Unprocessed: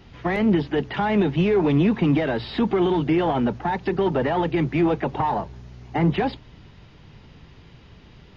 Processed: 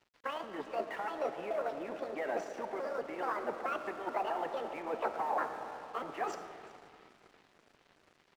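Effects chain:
pitch shifter gated in a rhythm +7.5 semitones, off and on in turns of 215 ms
reversed playback
downward compressor 6 to 1, threshold −34 dBFS, peak gain reduction 17.5 dB
reversed playback
harmonic and percussive parts rebalanced harmonic −9 dB
single-tap delay 373 ms −19.5 dB
on a send at −6 dB: convolution reverb RT60 4.4 s, pre-delay 10 ms
on the sum: dynamic equaliser 650 Hz, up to +6 dB, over −52 dBFS, Q 1
high-pass filter 410 Hz 12 dB per octave
high shelf with overshoot 2,700 Hz −7.5 dB, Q 1.5
dead-zone distortion −56 dBFS
level +1 dB

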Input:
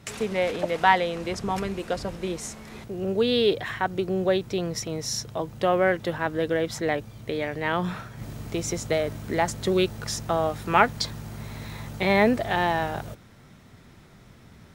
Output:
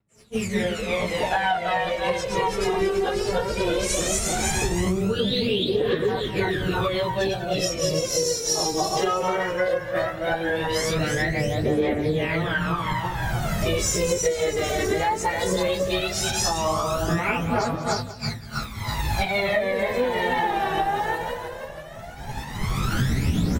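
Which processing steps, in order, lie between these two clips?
feedback delay that plays each chunk backwards 101 ms, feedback 69%, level 0 dB
camcorder AGC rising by 19 dB per second
downward expander −16 dBFS
phase shifter 0.27 Hz, delay 2.6 ms, feedback 72%
pitch vibrato 1.6 Hz 38 cents
on a send: single-tap delay 117 ms −19 dB
on the sum: time stretch by phase vocoder 1.6×
downward compressor 6 to 1, threshold −20 dBFS, peak gain reduction 13 dB

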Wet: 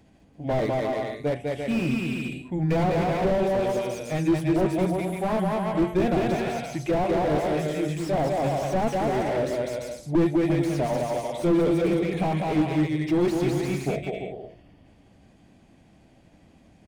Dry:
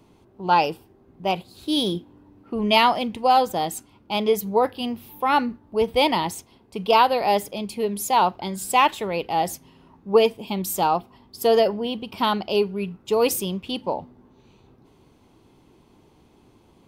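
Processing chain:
pitch shift by two crossfaded delay taps −5 semitones
hum removal 118.4 Hz, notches 10
on a send: bouncing-ball delay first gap 200 ms, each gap 0.7×, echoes 5
on the sum: slew-rate limiting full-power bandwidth 47 Hz

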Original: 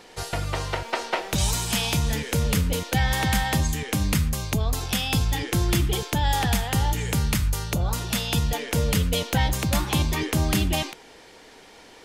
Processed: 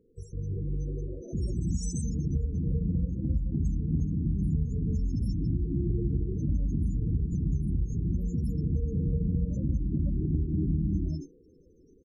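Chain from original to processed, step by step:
elliptic band-stop filter 440–5,700 Hz, stop band 40 dB
high-shelf EQ 2,300 Hz −3 dB
comb filter 1.3 ms, depth 37%
reverb whose tail is shaped and stops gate 400 ms rising, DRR −5.5 dB
dynamic equaliser 270 Hz, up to +5 dB, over −36 dBFS, Q 1.2
spectral peaks only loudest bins 16
downward compressor 2.5 to 1, threshold −18 dBFS, peak gain reduction 6 dB
0:01.78–0:04.00: multiband upward and downward expander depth 70%
level −7.5 dB

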